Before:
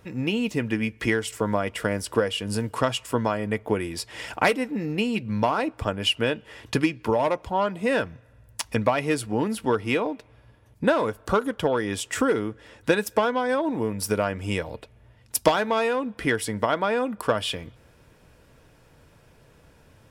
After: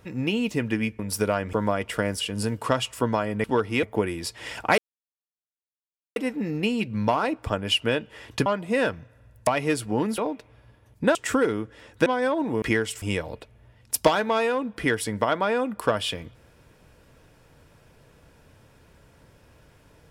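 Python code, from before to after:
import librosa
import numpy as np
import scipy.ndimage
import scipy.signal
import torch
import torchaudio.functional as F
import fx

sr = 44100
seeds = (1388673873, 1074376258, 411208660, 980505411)

y = fx.edit(x, sr, fx.swap(start_s=0.99, length_s=0.4, other_s=13.89, other_length_s=0.54),
    fx.cut(start_s=2.07, length_s=0.26),
    fx.insert_silence(at_s=4.51, length_s=1.38),
    fx.cut(start_s=6.81, length_s=0.78),
    fx.cut(start_s=8.6, length_s=0.28),
    fx.move(start_s=9.59, length_s=0.39, to_s=3.56),
    fx.cut(start_s=10.95, length_s=1.07),
    fx.cut(start_s=12.93, length_s=0.4), tone=tone)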